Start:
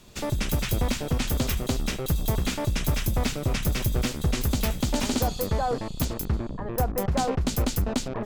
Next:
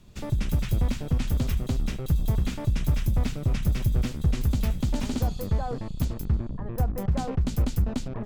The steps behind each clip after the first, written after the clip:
bass and treble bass +10 dB, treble −3 dB
level −7.5 dB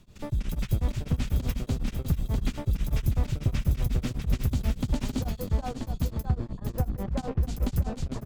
on a send: single-tap delay 649 ms −6.5 dB
on the sum: tremolo along a rectified sine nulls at 8.1 Hz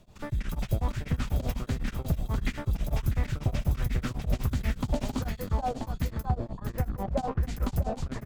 auto-filter bell 1.4 Hz 610–2,000 Hz +12 dB
level −2 dB

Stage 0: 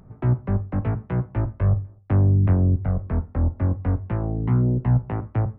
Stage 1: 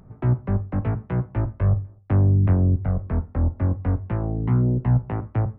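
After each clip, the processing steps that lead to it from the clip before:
no processing that can be heard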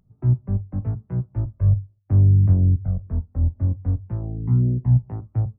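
every bin expanded away from the loudest bin 1.5 to 1
level +2 dB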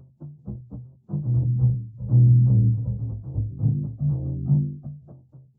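partials spread apart or drawn together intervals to 77%
backwards echo 857 ms −7 dB
every ending faded ahead of time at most 100 dB per second

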